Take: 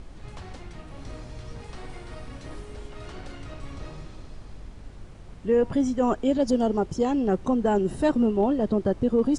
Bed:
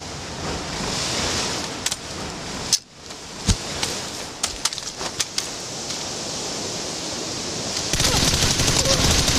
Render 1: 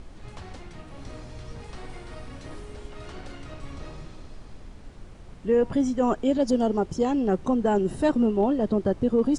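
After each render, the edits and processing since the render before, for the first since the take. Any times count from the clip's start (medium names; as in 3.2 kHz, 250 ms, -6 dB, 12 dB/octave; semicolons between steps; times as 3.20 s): de-hum 50 Hz, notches 3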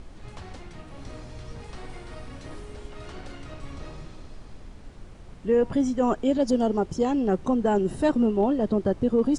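no audible change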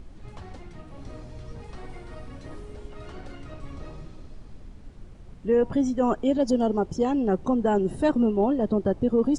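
noise reduction 6 dB, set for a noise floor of -45 dBFS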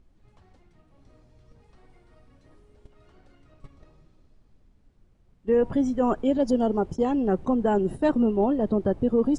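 dynamic bell 5.8 kHz, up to -5 dB, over -54 dBFS, Q 0.82; gate -32 dBFS, range -16 dB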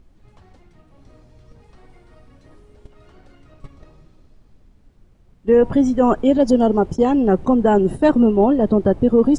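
trim +8 dB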